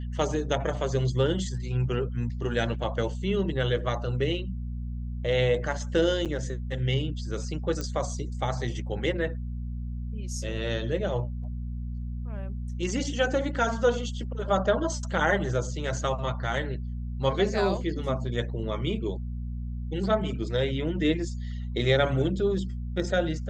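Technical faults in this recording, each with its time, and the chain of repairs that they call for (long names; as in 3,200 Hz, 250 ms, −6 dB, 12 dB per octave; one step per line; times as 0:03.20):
mains hum 60 Hz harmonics 4 −33 dBFS
0:06.25–0:06.26: drop-out 7.4 ms
0:07.81: click −19 dBFS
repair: click removal
hum removal 60 Hz, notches 4
repair the gap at 0:06.25, 7.4 ms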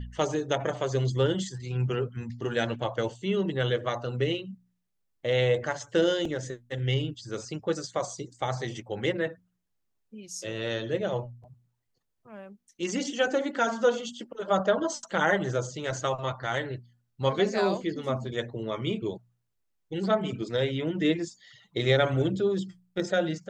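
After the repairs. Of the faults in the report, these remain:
none of them is left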